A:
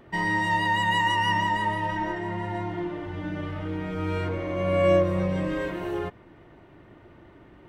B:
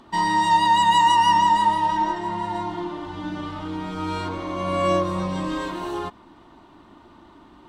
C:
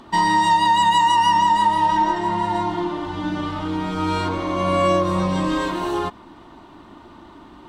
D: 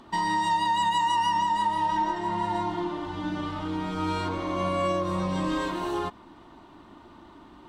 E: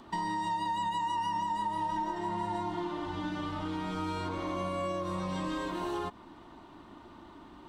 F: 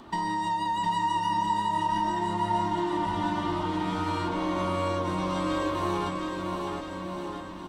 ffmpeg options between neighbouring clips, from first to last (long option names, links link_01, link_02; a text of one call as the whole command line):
ffmpeg -i in.wav -af "equalizer=frequency=125:width_type=o:width=1:gain=-9,equalizer=frequency=250:width_type=o:width=1:gain=8,equalizer=frequency=500:width_type=o:width=1:gain=-8,equalizer=frequency=1000:width_type=o:width=1:gain=12,equalizer=frequency=2000:width_type=o:width=1:gain=-8,equalizer=frequency=4000:width_type=o:width=1:gain=11,equalizer=frequency=8000:width_type=o:width=1:gain=9" out.wav
ffmpeg -i in.wav -af "acompressor=threshold=-19dB:ratio=6,volume=5.5dB" out.wav
ffmpeg -i in.wav -af "alimiter=limit=-11.5dB:level=0:latency=1:release=317,volume=-6dB" out.wav
ffmpeg -i in.wav -filter_complex "[0:a]acrossover=split=860|7200[link_01][link_02][link_03];[link_01]acompressor=threshold=-32dB:ratio=4[link_04];[link_02]acompressor=threshold=-38dB:ratio=4[link_05];[link_03]acompressor=threshold=-60dB:ratio=4[link_06];[link_04][link_05][link_06]amix=inputs=3:normalize=0,volume=-1.5dB" out.wav
ffmpeg -i in.wav -af "aecho=1:1:710|1314|1826|2263|2633:0.631|0.398|0.251|0.158|0.1,volume=4dB" out.wav